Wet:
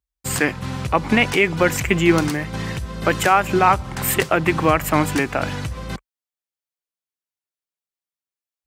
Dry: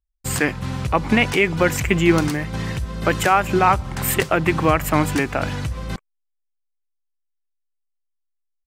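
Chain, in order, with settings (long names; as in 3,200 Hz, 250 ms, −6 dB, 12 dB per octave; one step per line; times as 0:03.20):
high-pass filter 41 Hz 24 dB per octave
low-shelf EQ 140 Hz −4.5 dB
level +1 dB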